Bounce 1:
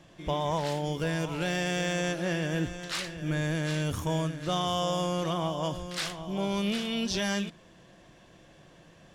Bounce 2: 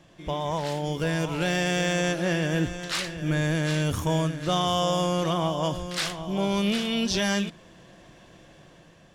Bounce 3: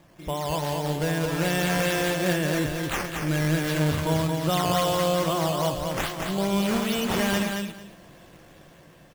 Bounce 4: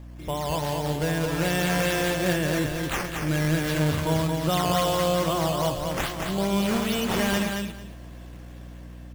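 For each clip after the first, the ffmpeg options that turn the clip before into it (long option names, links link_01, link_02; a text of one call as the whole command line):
ffmpeg -i in.wav -af "dynaudnorm=framelen=360:gausssize=5:maxgain=4.5dB" out.wav
ffmpeg -i in.wav -filter_complex "[0:a]acrusher=samples=8:mix=1:aa=0.000001:lfo=1:lforange=8:lforate=2.4,asplit=2[link_01][link_02];[link_02]aecho=0:1:223|446|669:0.596|0.107|0.0193[link_03];[link_01][link_03]amix=inputs=2:normalize=0" out.wav
ffmpeg -i in.wav -af "aeval=exprs='val(0)+0.01*(sin(2*PI*60*n/s)+sin(2*PI*2*60*n/s)/2+sin(2*PI*3*60*n/s)/3+sin(2*PI*4*60*n/s)/4+sin(2*PI*5*60*n/s)/5)':channel_layout=same" out.wav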